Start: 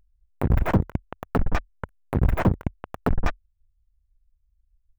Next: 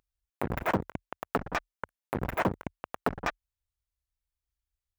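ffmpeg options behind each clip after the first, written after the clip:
-af "highpass=f=550:p=1"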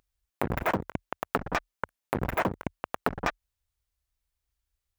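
-af "acompressor=threshold=-29dB:ratio=4,volume=5.5dB"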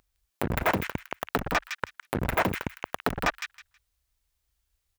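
-filter_complex "[0:a]acrossover=split=1800[a][b];[a]asoftclip=type=tanh:threshold=-23dB[c];[b]aecho=1:1:160|320|480:0.708|0.135|0.0256[d];[c][d]amix=inputs=2:normalize=0,volume=5dB"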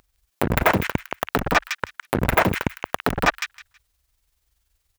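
-af "tremolo=f=21:d=0.462,volume=9dB"

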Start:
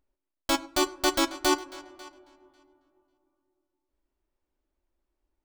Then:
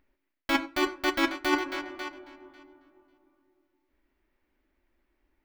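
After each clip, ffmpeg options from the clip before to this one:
-af "areverse,acompressor=threshold=-32dB:ratio=6,areverse,equalizer=f=250:t=o:w=1:g=6,equalizer=f=2k:t=o:w=1:g=12,equalizer=f=8k:t=o:w=1:g=-10,volume=5dB"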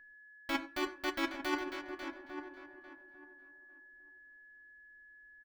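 -filter_complex "[0:a]aeval=exprs='val(0)+0.00501*sin(2*PI*1700*n/s)':c=same,asplit=2[a][b];[b]adelay=848,lowpass=f=1.1k:p=1,volume=-8dB,asplit=2[c][d];[d]adelay=848,lowpass=f=1.1k:p=1,volume=0.2,asplit=2[e][f];[f]adelay=848,lowpass=f=1.1k:p=1,volume=0.2[g];[a][c][e][g]amix=inputs=4:normalize=0,volume=-9dB"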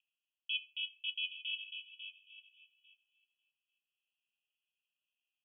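-af "asuperpass=centerf=2900:order=20:qfactor=3.1,volume=9dB"

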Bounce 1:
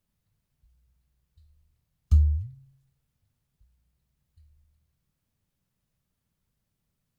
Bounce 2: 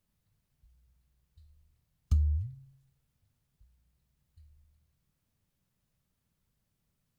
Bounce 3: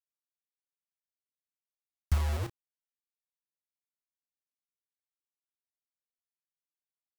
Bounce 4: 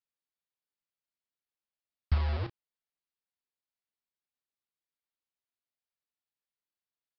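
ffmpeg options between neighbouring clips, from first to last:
-af "acompressor=threshold=-25dB:ratio=3"
-filter_complex "[0:a]acrusher=bits=5:mix=0:aa=0.000001,asplit=2[a][b];[b]adelay=32,volume=-10.5dB[c];[a][c]amix=inputs=2:normalize=0"
-af "aresample=11025,aresample=44100"

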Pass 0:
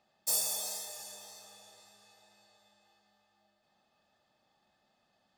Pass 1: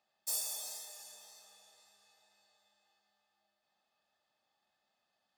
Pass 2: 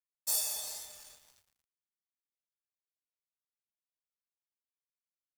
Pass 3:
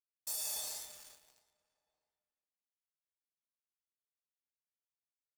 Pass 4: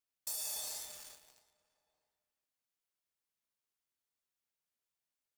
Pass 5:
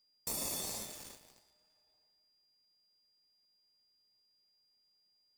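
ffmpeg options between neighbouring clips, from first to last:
-af "lowshelf=f=430:g=-11.5,volume=-5.5dB"
-filter_complex "[0:a]asplit=2[a][b];[b]adelay=13,volume=-5dB[c];[a][c]amix=inputs=2:normalize=0,aeval=exprs='sgn(val(0))*max(abs(val(0))-0.00237,0)':c=same,asubboost=boost=4:cutoff=170,volume=4.5dB"
-filter_complex "[0:a]alimiter=level_in=4dB:limit=-24dB:level=0:latency=1:release=10,volume=-4dB,aeval=exprs='sgn(val(0))*max(abs(val(0))-0.00112,0)':c=same,asplit=2[a][b];[b]adelay=653,lowpass=f=2k:p=1,volume=-24dB,asplit=2[c][d];[d]adelay=653,lowpass=f=2k:p=1,volume=0.3[e];[a][c][e]amix=inputs=3:normalize=0"
-af "acompressor=threshold=-43dB:ratio=2,volume=3.5dB"
-filter_complex "[0:a]asplit=2[a][b];[b]acrusher=samples=28:mix=1:aa=0.000001,volume=-7.5dB[c];[a][c]amix=inputs=2:normalize=0,aeval=exprs='val(0)+0.000224*sin(2*PI*4800*n/s)':c=same,volume=1dB"

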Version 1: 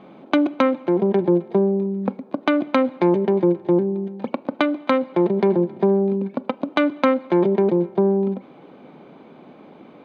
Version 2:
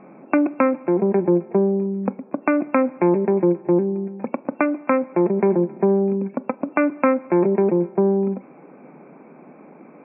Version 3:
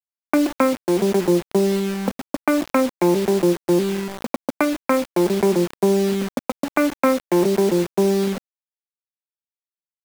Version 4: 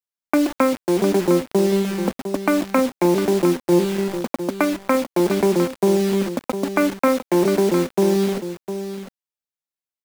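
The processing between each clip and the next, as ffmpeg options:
-af "afftfilt=real='re*between(b*sr/4096,130,2700)':imag='im*between(b*sr/4096,130,2700)':win_size=4096:overlap=0.75"
-af "acrusher=bits=4:mix=0:aa=0.000001"
-af "aecho=1:1:705:0.316"

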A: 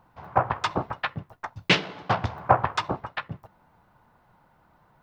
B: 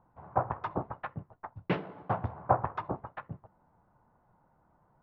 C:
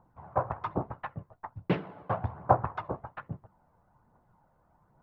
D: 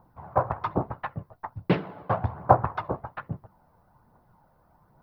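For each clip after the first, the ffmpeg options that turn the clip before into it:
-af "lowpass=1.1k,volume=-5.5dB"
-af "aphaser=in_gain=1:out_gain=1:delay=2:decay=0.34:speed=1.2:type=triangular"
-af "aexciter=amount=1.3:drive=3:freq=4k,volume=5dB"

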